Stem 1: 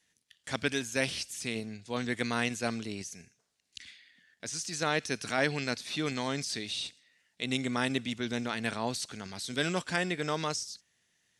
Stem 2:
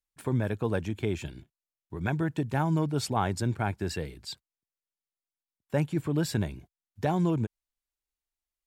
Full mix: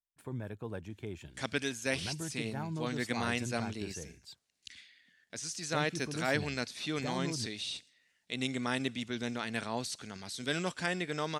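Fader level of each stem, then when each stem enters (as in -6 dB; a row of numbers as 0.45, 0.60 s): -3.0, -12.0 dB; 0.90, 0.00 s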